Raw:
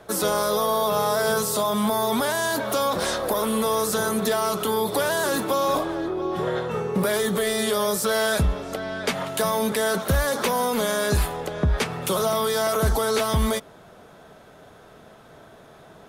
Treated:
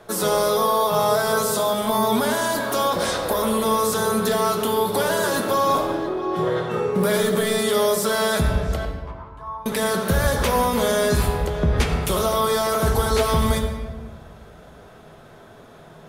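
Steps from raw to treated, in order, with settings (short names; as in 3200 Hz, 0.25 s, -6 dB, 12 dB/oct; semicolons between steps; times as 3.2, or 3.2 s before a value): 8.85–9.66 band-pass 1000 Hz, Q 12; on a send: reverb RT60 1.3 s, pre-delay 5 ms, DRR 2.5 dB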